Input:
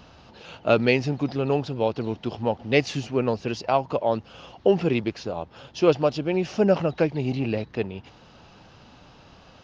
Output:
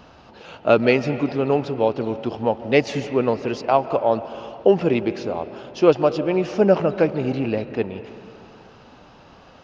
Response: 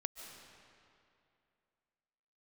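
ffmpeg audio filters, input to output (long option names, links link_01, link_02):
-filter_complex "[0:a]asplit=2[link_01][link_02];[link_02]highpass=180,lowpass=2500[link_03];[1:a]atrim=start_sample=2205[link_04];[link_03][link_04]afir=irnorm=-1:irlink=0,volume=-1dB[link_05];[link_01][link_05]amix=inputs=2:normalize=0"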